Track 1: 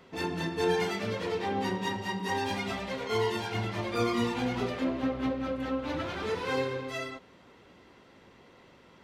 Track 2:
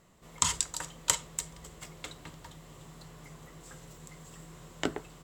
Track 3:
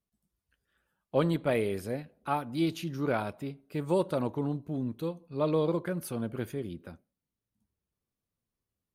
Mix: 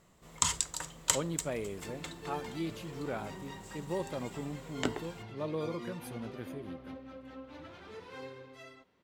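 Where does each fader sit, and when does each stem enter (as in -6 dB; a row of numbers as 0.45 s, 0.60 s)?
-15.5 dB, -1.5 dB, -8.5 dB; 1.65 s, 0.00 s, 0.00 s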